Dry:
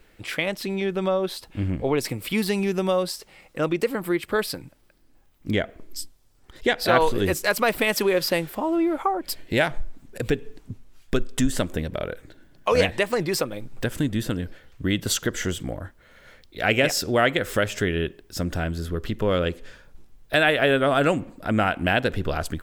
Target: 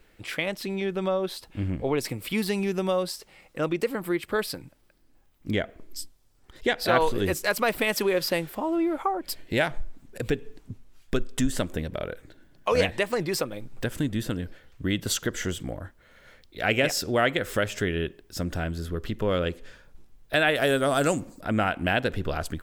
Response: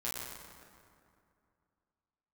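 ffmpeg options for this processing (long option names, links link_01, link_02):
-filter_complex "[0:a]asettb=1/sr,asplit=3[link_01][link_02][link_03];[link_01]atrim=end=20.554[link_04];[link_02]atrim=start=20.55:end=21.41,asetpts=PTS-STARTPTS,afade=type=in:duration=0.004:curve=qsin,afade=type=out:start_time=0.856:duration=0.004:curve=qsin,highshelf=frequency=4000:width_type=q:width=1.5:gain=11[link_05];[link_03]atrim=start=21.406[link_06];[link_04][link_05]acrossfade=duration=0.004:curve1=hsin:curve2=qsin[link_07];[link_07][link_06]acrossfade=duration=0.004:curve1=qsin:curve2=hsin,volume=-3dB"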